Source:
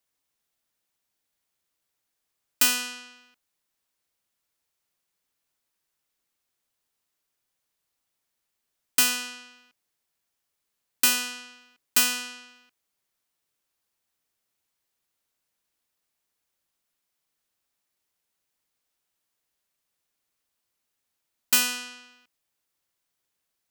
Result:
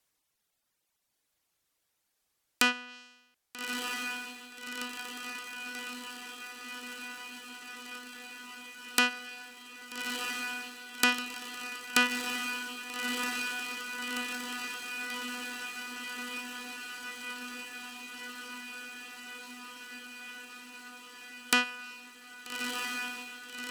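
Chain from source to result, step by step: reverb removal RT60 1.6 s; treble ducked by the level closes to 2200 Hz, closed at -26.5 dBFS; diffused feedback echo 1.267 s, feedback 79%, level -4 dB; gain +4.5 dB

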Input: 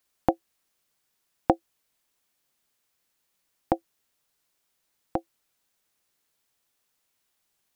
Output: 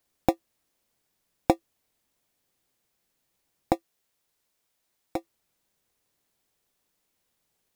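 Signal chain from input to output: in parallel at -9.5 dB: sample-and-hold 29×; 3.75–5.16 on the sum: low shelf 500 Hz -6.5 dB; gain -1.5 dB

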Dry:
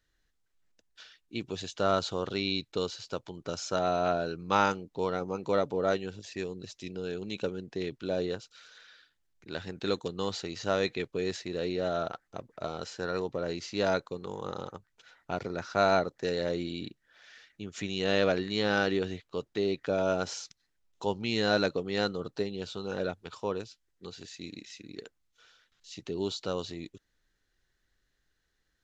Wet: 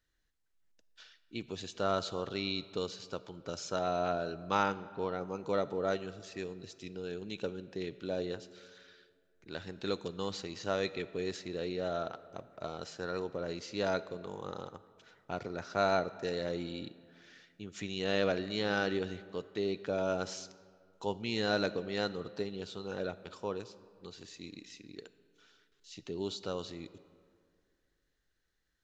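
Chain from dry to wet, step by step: 4.63–5.21 air absorption 130 m; reverb RT60 2.2 s, pre-delay 4 ms, DRR 15.5 dB; gain -4.5 dB

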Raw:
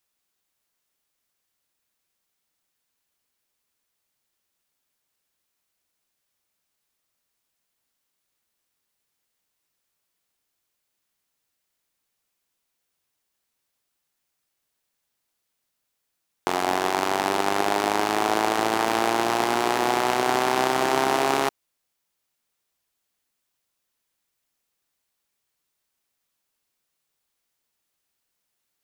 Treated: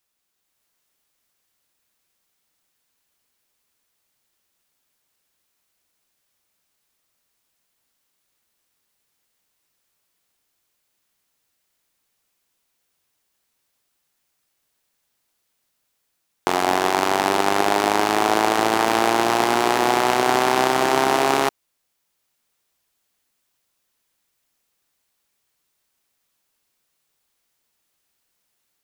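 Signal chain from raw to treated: AGC gain up to 4 dB; gain +1.5 dB

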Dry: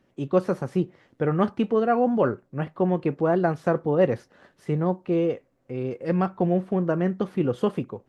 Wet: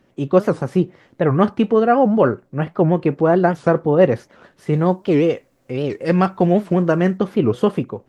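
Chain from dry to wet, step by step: 4.73–7.18 high shelf 2400 Hz +10 dB; record warp 78 rpm, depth 250 cents; gain +7 dB

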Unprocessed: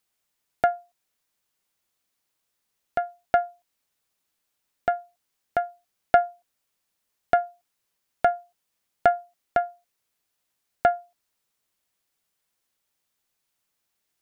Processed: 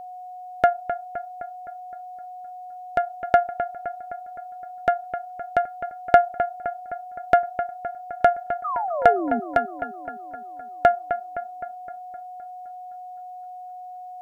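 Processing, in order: painted sound fall, 8.64–9.4, 220–1300 Hz -30 dBFS; analogue delay 0.258 s, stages 4096, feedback 58%, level -10 dB; whine 730 Hz -39 dBFS; gain +3.5 dB

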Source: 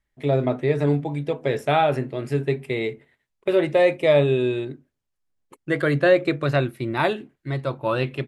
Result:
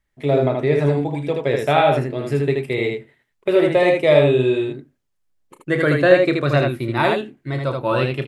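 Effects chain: early reflections 33 ms -11 dB, 78 ms -3.5 dB; gain +2.5 dB

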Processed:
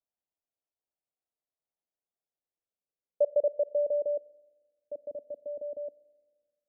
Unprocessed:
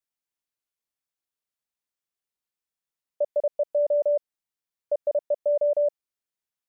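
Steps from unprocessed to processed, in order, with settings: Schroeder reverb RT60 1.6 s, combs from 30 ms, DRR 19 dB; low-pass sweep 690 Hz -> 280 Hz, 2.23–5.11; gain -4 dB

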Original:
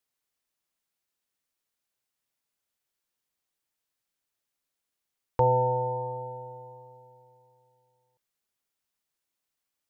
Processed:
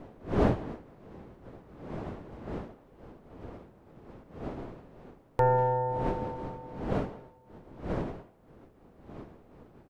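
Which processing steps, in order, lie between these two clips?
tracing distortion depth 0.095 ms; wind noise 450 Hz -36 dBFS; speakerphone echo 0.19 s, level -19 dB; gain -1.5 dB

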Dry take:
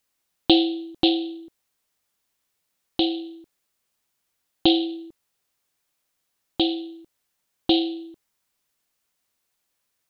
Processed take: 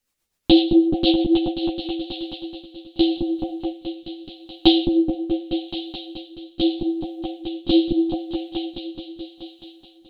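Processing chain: on a send: repeats that get brighter 0.214 s, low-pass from 400 Hz, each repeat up 1 oct, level 0 dB; on the sum: rotary speaker horn 8 Hz, later 0.8 Hz, at 1.31; low shelf 90 Hz +10 dB; ensemble effect; gain +5.5 dB

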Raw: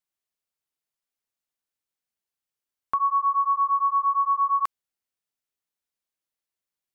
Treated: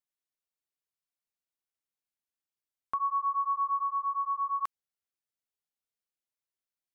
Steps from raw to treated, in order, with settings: 3.83–4.63 low shelf 490 Hz -10 dB; gain -7 dB

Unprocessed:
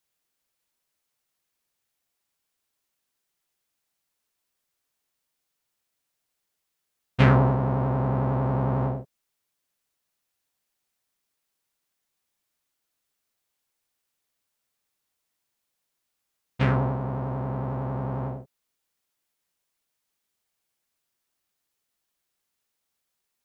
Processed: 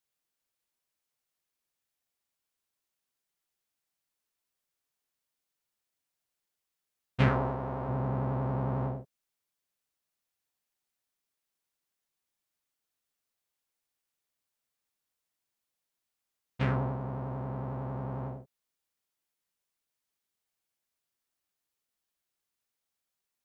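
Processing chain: 7.28–7.89 bell 160 Hz -9 dB 1.2 oct; gain -6.5 dB

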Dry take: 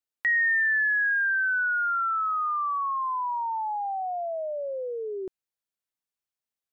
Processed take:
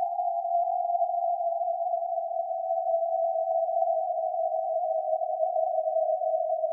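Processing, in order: non-linear reverb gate 0.4 s flat, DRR 0.5 dB; Paulstretch 30×, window 0.10 s, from 4.21

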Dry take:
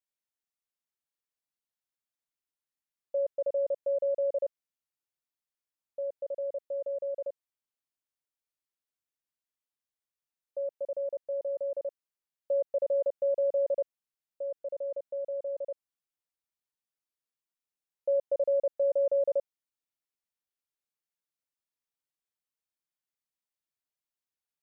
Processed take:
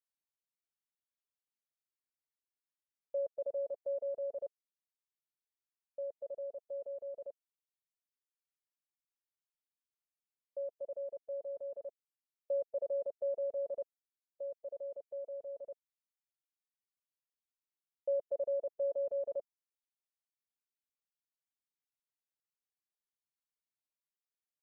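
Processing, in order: reverb removal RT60 2 s; gain -5.5 dB

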